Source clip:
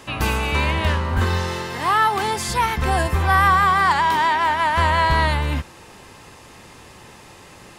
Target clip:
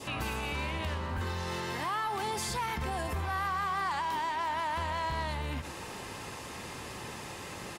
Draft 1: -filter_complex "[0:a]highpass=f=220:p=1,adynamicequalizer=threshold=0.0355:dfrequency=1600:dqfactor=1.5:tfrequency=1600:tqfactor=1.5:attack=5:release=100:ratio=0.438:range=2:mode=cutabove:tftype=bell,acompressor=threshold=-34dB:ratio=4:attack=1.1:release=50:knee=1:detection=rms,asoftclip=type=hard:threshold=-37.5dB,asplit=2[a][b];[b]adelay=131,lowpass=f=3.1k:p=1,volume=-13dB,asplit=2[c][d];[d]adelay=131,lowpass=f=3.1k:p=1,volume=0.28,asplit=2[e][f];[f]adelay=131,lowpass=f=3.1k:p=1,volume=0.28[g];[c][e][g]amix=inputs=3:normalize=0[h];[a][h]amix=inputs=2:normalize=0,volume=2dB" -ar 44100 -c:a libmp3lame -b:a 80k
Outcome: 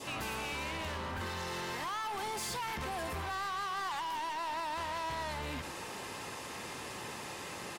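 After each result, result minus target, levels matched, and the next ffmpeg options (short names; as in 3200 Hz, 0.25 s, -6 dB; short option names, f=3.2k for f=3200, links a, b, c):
hard clip: distortion +13 dB; 125 Hz band -4.5 dB
-filter_complex "[0:a]highpass=f=220:p=1,adynamicequalizer=threshold=0.0355:dfrequency=1600:dqfactor=1.5:tfrequency=1600:tqfactor=1.5:attack=5:release=100:ratio=0.438:range=2:mode=cutabove:tftype=bell,acompressor=threshold=-34dB:ratio=4:attack=1.1:release=50:knee=1:detection=rms,asoftclip=type=hard:threshold=-30dB,asplit=2[a][b];[b]adelay=131,lowpass=f=3.1k:p=1,volume=-13dB,asplit=2[c][d];[d]adelay=131,lowpass=f=3.1k:p=1,volume=0.28,asplit=2[e][f];[f]adelay=131,lowpass=f=3.1k:p=1,volume=0.28[g];[c][e][g]amix=inputs=3:normalize=0[h];[a][h]amix=inputs=2:normalize=0,volume=2dB" -ar 44100 -c:a libmp3lame -b:a 80k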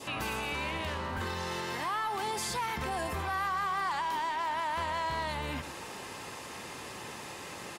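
125 Hz band -4.5 dB
-filter_complex "[0:a]highpass=f=57:p=1,adynamicequalizer=threshold=0.0355:dfrequency=1600:dqfactor=1.5:tfrequency=1600:tqfactor=1.5:attack=5:release=100:ratio=0.438:range=2:mode=cutabove:tftype=bell,acompressor=threshold=-34dB:ratio=4:attack=1.1:release=50:knee=1:detection=rms,asoftclip=type=hard:threshold=-30dB,asplit=2[a][b];[b]adelay=131,lowpass=f=3.1k:p=1,volume=-13dB,asplit=2[c][d];[d]adelay=131,lowpass=f=3.1k:p=1,volume=0.28,asplit=2[e][f];[f]adelay=131,lowpass=f=3.1k:p=1,volume=0.28[g];[c][e][g]amix=inputs=3:normalize=0[h];[a][h]amix=inputs=2:normalize=0,volume=2dB" -ar 44100 -c:a libmp3lame -b:a 80k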